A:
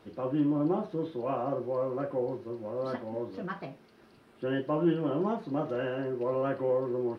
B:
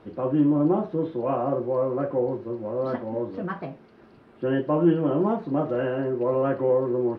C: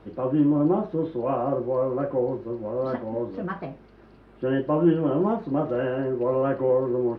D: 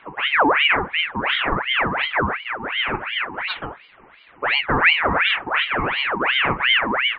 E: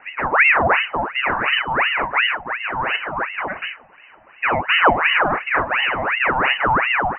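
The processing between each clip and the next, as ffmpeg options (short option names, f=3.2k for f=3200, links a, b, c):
-af "lowpass=f=1.5k:p=1,volume=7dB"
-af "aeval=exprs='val(0)+0.00158*(sin(2*PI*50*n/s)+sin(2*PI*2*50*n/s)/2+sin(2*PI*3*50*n/s)/3+sin(2*PI*4*50*n/s)/4+sin(2*PI*5*50*n/s)/5)':c=same"
-af "afftfilt=real='re*between(b*sr/4096,120,2400)':imag='im*between(b*sr/4096,120,2400)':win_size=4096:overlap=0.75,aeval=exprs='val(0)*sin(2*PI*1600*n/s+1600*0.65/2.8*sin(2*PI*2.8*n/s))':c=same,volume=6.5dB"
-af "lowpass=f=2.6k:t=q:w=0.5098,lowpass=f=2.6k:t=q:w=0.6013,lowpass=f=2.6k:t=q:w=0.9,lowpass=f=2.6k:t=q:w=2.563,afreqshift=-3000,volume=2.5dB"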